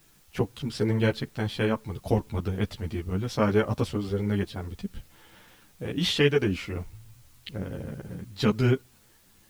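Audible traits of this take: a quantiser's noise floor 10-bit, dither triangular; a shimmering, thickened sound

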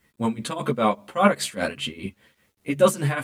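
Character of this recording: tremolo triangle 5 Hz, depth 90%; a quantiser's noise floor 12-bit, dither none; a shimmering, thickened sound

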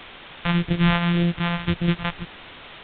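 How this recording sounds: a buzz of ramps at a fixed pitch in blocks of 256 samples; phasing stages 2, 1.8 Hz, lowest notch 320–1000 Hz; a quantiser's noise floor 6-bit, dither triangular; A-law

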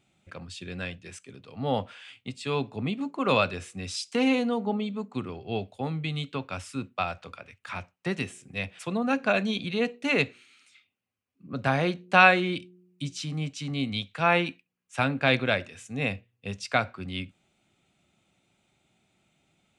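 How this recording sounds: noise floor -78 dBFS; spectral tilt -3.5 dB/oct

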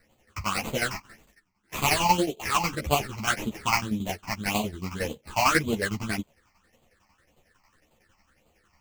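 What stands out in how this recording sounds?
aliases and images of a low sample rate 3600 Hz, jitter 20%; phasing stages 8, 1.8 Hz, lowest notch 460–1700 Hz; tremolo saw down 11 Hz, depth 70%; a shimmering, thickened sound

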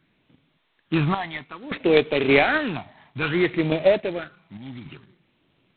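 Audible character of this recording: random-step tremolo 3.5 Hz, depth 85%; phasing stages 12, 0.59 Hz, lowest notch 450–1600 Hz; G.726

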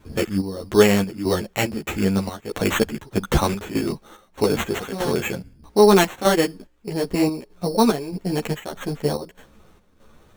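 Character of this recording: chopped level 1.6 Hz, depth 65%, duty 65%; aliases and images of a low sample rate 4900 Hz, jitter 0%; a shimmering, thickened sound

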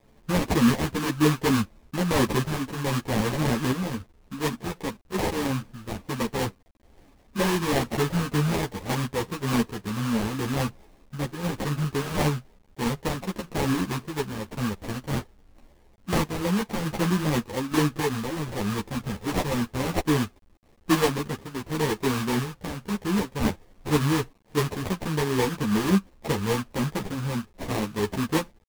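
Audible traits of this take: aliases and images of a low sample rate 1400 Hz, jitter 20%; random-step tremolo; a quantiser's noise floor 10-bit, dither none; a shimmering, thickened sound

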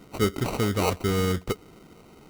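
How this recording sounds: aliases and images of a low sample rate 1700 Hz, jitter 0%

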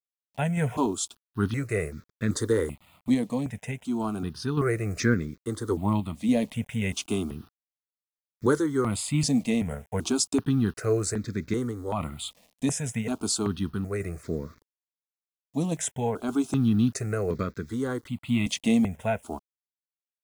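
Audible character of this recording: a quantiser's noise floor 10-bit, dither none; random-step tremolo; notches that jump at a steady rate 2.6 Hz 380–2900 Hz

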